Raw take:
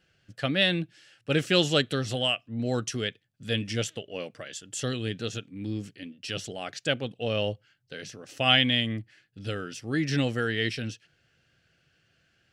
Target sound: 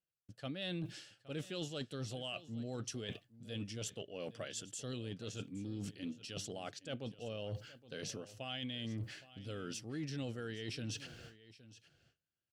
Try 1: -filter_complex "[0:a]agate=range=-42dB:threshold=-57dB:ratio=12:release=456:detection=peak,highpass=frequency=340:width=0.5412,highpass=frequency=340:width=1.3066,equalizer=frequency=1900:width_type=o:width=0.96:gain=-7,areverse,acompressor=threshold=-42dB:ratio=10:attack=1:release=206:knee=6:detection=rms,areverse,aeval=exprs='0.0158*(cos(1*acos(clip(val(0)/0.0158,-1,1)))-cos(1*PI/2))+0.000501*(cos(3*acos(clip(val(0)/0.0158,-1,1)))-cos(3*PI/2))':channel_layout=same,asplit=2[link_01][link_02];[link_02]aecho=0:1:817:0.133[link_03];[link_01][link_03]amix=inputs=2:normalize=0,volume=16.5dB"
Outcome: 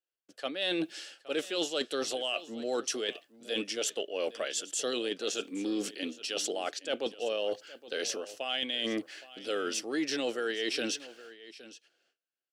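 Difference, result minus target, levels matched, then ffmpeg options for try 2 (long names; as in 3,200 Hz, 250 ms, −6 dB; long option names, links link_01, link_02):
downward compressor: peak gain reduction −9 dB; 250 Hz band −3.0 dB
-filter_complex "[0:a]agate=range=-42dB:threshold=-57dB:ratio=12:release=456:detection=peak,equalizer=frequency=1900:width_type=o:width=0.96:gain=-7,areverse,acompressor=threshold=-53dB:ratio=10:attack=1:release=206:knee=6:detection=rms,areverse,aeval=exprs='0.0158*(cos(1*acos(clip(val(0)/0.0158,-1,1)))-cos(1*PI/2))+0.000501*(cos(3*acos(clip(val(0)/0.0158,-1,1)))-cos(3*PI/2))':channel_layout=same,asplit=2[link_01][link_02];[link_02]aecho=0:1:817:0.133[link_03];[link_01][link_03]amix=inputs=2:normalize=0,volume=16.5dB"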